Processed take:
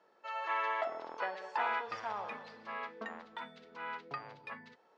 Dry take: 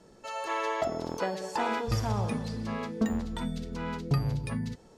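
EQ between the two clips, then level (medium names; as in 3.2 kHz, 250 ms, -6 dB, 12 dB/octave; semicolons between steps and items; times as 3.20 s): high-pass 990 Hz 12 dB/octave; dynamic bell 2.2 kHz, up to +5 dB, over -49 dBFS, Q 0.7; tape spacing loss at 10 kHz 40 dB; +3.0 dB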